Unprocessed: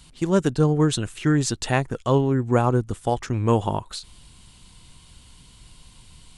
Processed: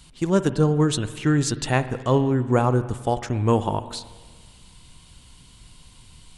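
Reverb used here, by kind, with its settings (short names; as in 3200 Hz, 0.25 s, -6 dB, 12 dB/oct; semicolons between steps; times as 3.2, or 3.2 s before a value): spring tank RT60 1.5 s, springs 47/55 ms, chirp 75 ms, DRR 12.5 dB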